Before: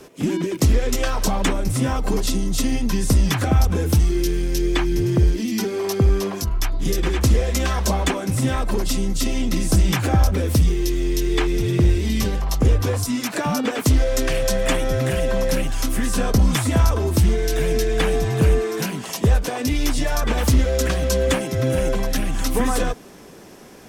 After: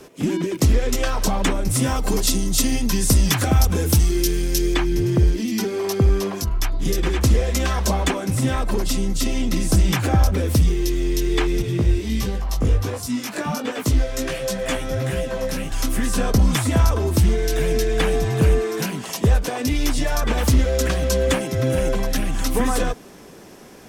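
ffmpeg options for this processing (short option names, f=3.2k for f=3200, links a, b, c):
-filter_complex "[0:a]asettb=1/sr,asplit=3[a][b][c];[a]atrim=end=1.714[d];[b]atrim=start=1.71:end=4.74,asetpts=PTS-STARTPTS,afade=t=in:d=0.004:c=qsin,afade=t=out:st=3.026:d=0.004:c=qsin,highshelf=f=4k:g=8.5[e];[c]atrim=start=4.736[f];[d][e]acrossfade=d=0.004:c1=hsin:c2=qsin[g];[g][f]acrossfade=d=0.004:c1=qsin:c2=hsin,asettb=1/sr,asplit=3[h][i][j];[h]atrim=end=11.624[k];[i]atrim=start=11.62:end=15.72,asetpts=PTS-STARTPTS,afade=t=in:d=0.004:c=qsin,afade=t=out:st=4.096:d=0.004:c=qsin,flanger=delay=15.5:depth=4.5:speed=1.4[l];[j]atrim=start=15.716[m];[k][l]acrossfade=d=0.004:c1=hsin:c2=qsin[n];[n][m]acrossfade=d=0.004:c1=qsin:c2=hsin"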